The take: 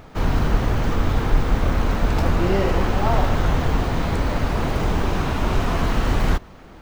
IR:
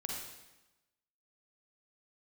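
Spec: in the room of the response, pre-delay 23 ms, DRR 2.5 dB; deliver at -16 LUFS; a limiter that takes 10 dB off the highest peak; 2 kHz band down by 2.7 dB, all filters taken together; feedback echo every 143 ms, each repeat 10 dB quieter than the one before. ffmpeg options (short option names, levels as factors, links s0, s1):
-filter_complex "[0:a]equalizer=f=2000:t=o:g=-3.5,alimiter=limit=0.188:level=0:latency=1,aecho=1:1:143|286|429|572:0.316|0.101|0.0324|0.0104,asplit=2[s0][s1];[1:a]atrim=start_sample=2205,adelay=23[s2];[s1][s2]afir=irnorm=-1:irlink=0,volume=0.668[s3];[s0][s3]amix=inputs=2:normalize=0,volume=2.24"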